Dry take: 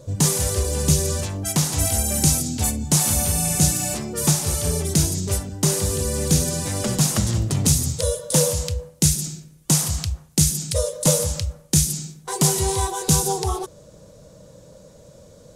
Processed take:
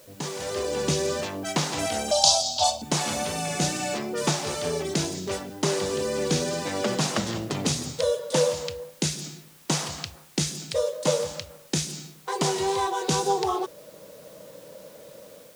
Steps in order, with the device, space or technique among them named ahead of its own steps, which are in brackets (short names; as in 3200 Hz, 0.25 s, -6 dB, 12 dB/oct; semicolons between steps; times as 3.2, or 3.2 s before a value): dictaphone (BPF 290–3900 Hz; AGC gain up to 11 dB; wow and flutter 22 cents; white noise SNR 26 dB); 2.11–2.82 EQ curve 100 Hz 0 dB, 150 Hz -15 dB, 430 Hz -26 dB, 620 Hz +13 dB, 950 Hz +7 dB, 2000 Hz -19 dB, 3300 Hz +10 dB, 4800 Hz +14 dB, 13000 Hz -4 dB; gain -7.5 dB